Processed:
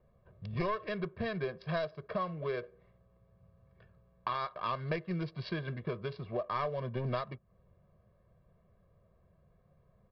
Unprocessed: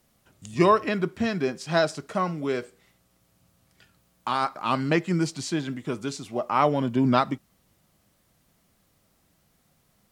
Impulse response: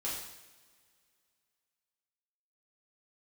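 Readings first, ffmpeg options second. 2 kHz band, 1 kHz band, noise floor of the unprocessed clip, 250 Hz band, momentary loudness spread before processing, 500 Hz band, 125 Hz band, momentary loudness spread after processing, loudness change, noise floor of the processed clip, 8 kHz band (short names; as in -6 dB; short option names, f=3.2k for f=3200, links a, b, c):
-10.5 dB, -12.0 dB, -67 dBFS, -14.5 dB, 10 LU, -10.0 dB, -7.5 dB, 6 LU, -11.5 dB, -68 dBFS, under -35 dB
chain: -af "bandreject=f=3k:w=13,adynamicsmooth=sensitivity=5.5:basefreq=1k,aresample=11025,aeval=exprs='clip(val(0),-1,0.106)':c=same,aresample=44100,aecho=1:1:1.8:0.91,acompressor=threshold=-34dB:ratio=4"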